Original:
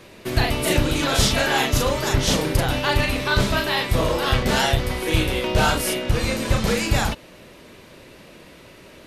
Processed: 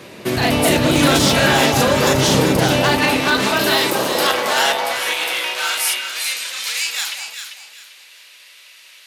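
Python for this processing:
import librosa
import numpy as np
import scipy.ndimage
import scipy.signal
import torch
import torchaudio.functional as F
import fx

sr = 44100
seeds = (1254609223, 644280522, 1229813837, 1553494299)

p1 = fx.bass_treble(x, sr, bass_db=14, treble_db=10, at=(3.59, 4.27))
p2 = fx.over_compress(p1, sr, threshold_db=-21.0, ratio=-0.5)
p3 = p1 + (p2 * 10.0 ** (-1.0 / 20.0))
p4 = 10.0 ** (-8.0 / 20.0) * (np.abs((p3 / 10.0 ** (-8.0 / 20.0) + 3.0) % 4.0 - 2.0) - 1.0)
p5 = fx.filter_sweep_highpass(p4, sr, from_hz=130.0, to_hz=2600.0, start_s=2.44, end_s=6.17, q=0.87)
y = fx.echo_alternate(p5, sr, ms=197, hz=1100.0, feedback_pct=53, wet_db=-2.5)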